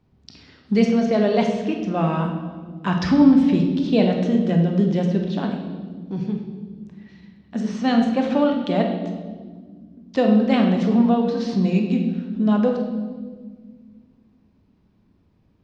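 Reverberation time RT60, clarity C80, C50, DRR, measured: 1.6 s, 6.5 dB, 5.0 dB, 2.0 dB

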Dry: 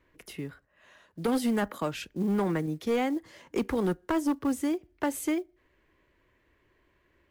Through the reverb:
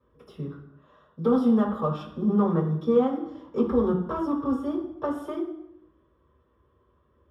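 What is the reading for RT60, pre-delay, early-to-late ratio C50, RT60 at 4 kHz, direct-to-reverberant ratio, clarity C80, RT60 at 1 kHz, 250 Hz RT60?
0.75 s, 3 ms, 6.0 dB, 0.60 s, -5.5 dB, 10.0 dB, 0.70 s, 0.85 s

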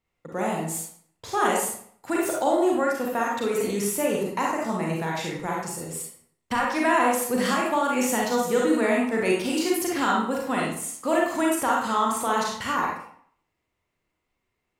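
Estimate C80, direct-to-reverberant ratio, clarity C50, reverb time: 5.5 dB, -3.0 dB, 0.5 dB, 0.60 s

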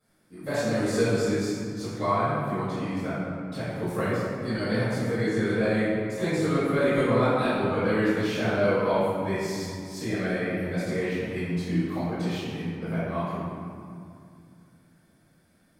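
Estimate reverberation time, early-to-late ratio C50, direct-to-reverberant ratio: 2.3 s, -4.5 dB, -15.0 dB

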